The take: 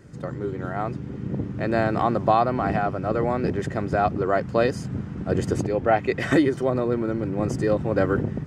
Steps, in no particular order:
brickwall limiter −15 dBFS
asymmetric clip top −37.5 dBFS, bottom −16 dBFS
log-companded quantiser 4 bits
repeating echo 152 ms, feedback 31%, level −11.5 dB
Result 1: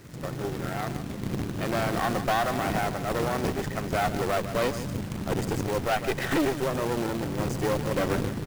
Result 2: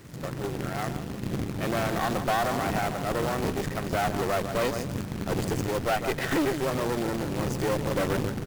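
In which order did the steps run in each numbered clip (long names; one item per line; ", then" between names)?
asymmetric clip, then repeating echo, then log-companded quantiser, then brickwall limiter
repeating echo, then log-companded quantiser, then asymmetric clip, then brickwall limiter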